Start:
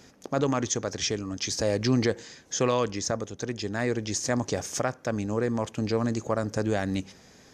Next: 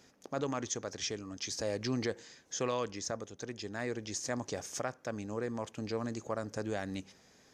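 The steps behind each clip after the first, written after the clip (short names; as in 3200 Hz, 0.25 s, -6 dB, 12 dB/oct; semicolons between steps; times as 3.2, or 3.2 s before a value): low shelf 240 Hz -5 dB; gain -8 dB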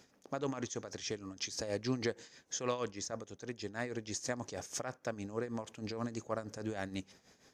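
tremolo 6.3 Hz, depth 68%; gain +1 dB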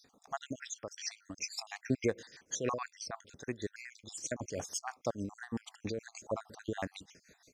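random spectral dropouts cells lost 59%; gain +4.5 dB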